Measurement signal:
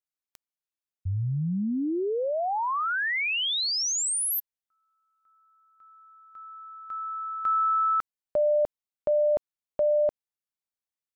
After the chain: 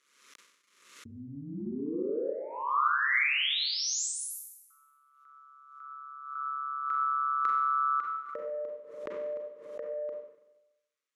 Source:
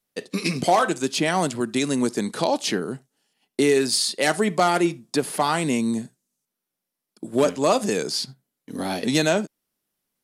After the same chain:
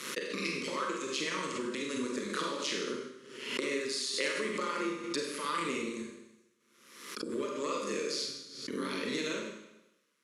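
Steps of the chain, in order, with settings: dynamic bell 1.5 kHz, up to -5 dB, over -41 dBFS, Q 3.3; compression 8:1, threshold -35 dBFS; AM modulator 140 Hz, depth 70%; saturation -22 dBFS; Butterworth band-stop 750 Hz, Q 1.7; cabinet simulation 320–9300 Hz, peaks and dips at 630 Hz -4 dB, 1.2 kHz +6 dB, 2.1 kHz +4 dB, 4.8 kHz -4 dB, 8.6 kHz -8 dB; Schroeder reverb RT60 0.92 s, combs from 32 ms, DRR -0.5 dB; swell ahead of each attack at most 61 dB/s; trim +7 dB

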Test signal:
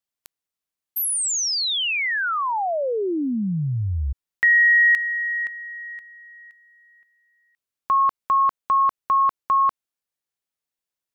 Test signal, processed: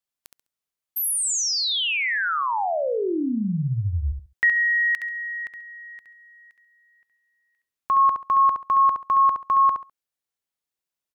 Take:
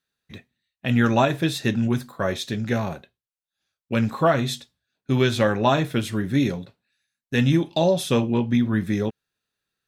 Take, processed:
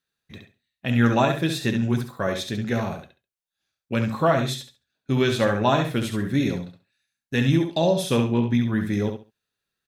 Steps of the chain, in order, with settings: feedback delay 68 ms, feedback 21%, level -6.5 dB; trim -1.5 dB

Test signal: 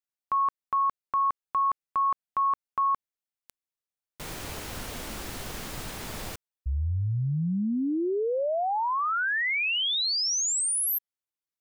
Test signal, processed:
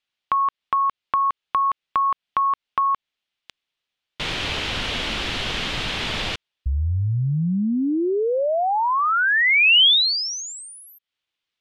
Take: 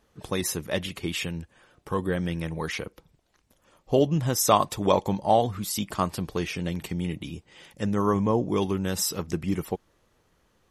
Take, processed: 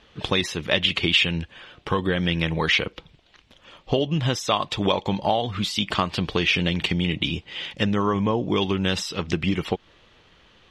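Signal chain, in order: treble shelf 2.5 kHz +8 dB; compression 6:1, threshold -28 dBFS; resonant low-pass 3.2 kHz, resonance Q 2.2; trim +8.5 dB

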